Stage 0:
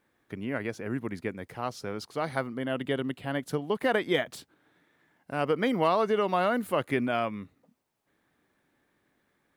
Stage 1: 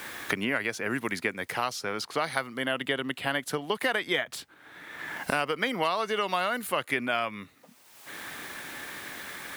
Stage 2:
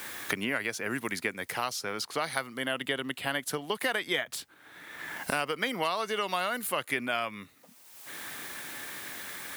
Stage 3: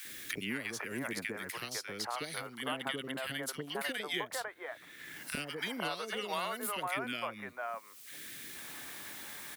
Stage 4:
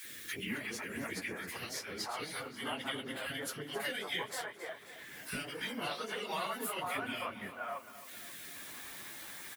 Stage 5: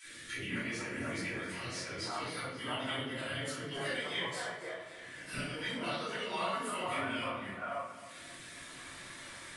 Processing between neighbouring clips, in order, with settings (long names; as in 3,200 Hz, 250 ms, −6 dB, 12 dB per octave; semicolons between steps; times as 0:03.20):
tilt shelving filter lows −8 dB, about 840 Hz; multiband upward and downward compressor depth 100%
high-shelf EQ 5,200 Hz +7.5 dB; level −3 dB
three-band delay without the direct sound highs, lows, mids 50/500 ms, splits 490/1,600 Hz; level −4 dB
random phases in long frames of 50 ms; repeating echo 268 ms, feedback 60%, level −14.5 dB; level −1.5 dB
convolution reverb RT60 0.75 s, pre-delay 3 ms, DRR −9.5 dB; downsampling to 22,050 Hz; level −8.5 dB